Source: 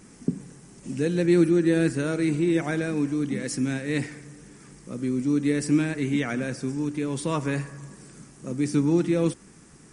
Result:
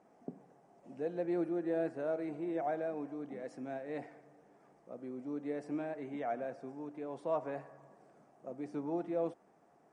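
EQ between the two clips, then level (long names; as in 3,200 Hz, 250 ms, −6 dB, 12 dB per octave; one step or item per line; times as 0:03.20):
resonant band-pass 690 Hz, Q 5.5
+3.5 dB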